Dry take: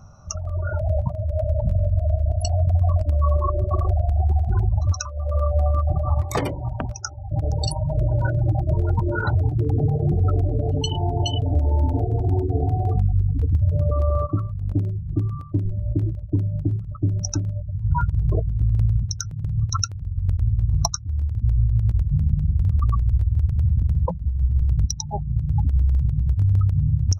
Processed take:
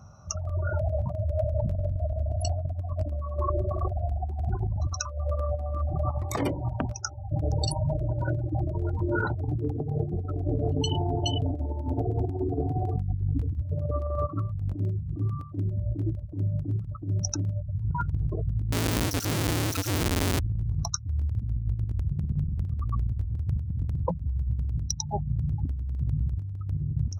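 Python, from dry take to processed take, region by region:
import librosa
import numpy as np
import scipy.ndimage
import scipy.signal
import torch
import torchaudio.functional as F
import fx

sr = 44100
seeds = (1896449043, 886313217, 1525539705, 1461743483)

y = fx.chain(x, sr, fx.clip_1bit(),
    fx.high_shelf(hz=2100.0, db=10.5), at=(18.72, 20.39))
y = scipy.signal.sosfilt(scipy.signal.butter(2, 59.0, 'highpass', fs=sr, output='sos'), y)
y = fx.dynamic_eq(y, sr, hz=300.0, q=1.8, threshold_db=-41.0, ratio=4.0, max_db=5)
y = fx.over_compress(y, sr, threshold_db=-22.0, ratio=-0.5)
y = F.gain(torch.from_numpy(y), -4.5).numpy()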